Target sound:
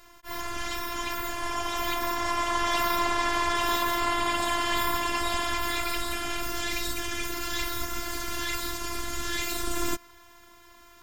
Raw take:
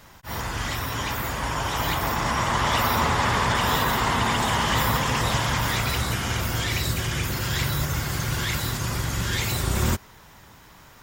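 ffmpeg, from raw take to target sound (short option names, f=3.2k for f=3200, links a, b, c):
-filter_complex "[0:a]asettb=1/sr,asplit=3[a][b][c];[a]atrim=end=3.984[d];[b]atrim=start=3.98:end=6.43,asetpts=PTS-STARTPTS,afade=t=in:d=0.004:c=qsin,afade=t=out:st=2.446:d=0.004:c=qsin,bandreject=f=6k:w=7.1[e];[c]atrim=start=6.426[f];[d][e]acrossfade=d=0.004:c1=hsin:c2=qsin[g];[g][f]acrossfade=d=0.004:c1=qsin:c2=hsin,afftfilt=real='hypot(re,im)*cos(PI*b)':imag='0':win_size=512:overlap=0.75"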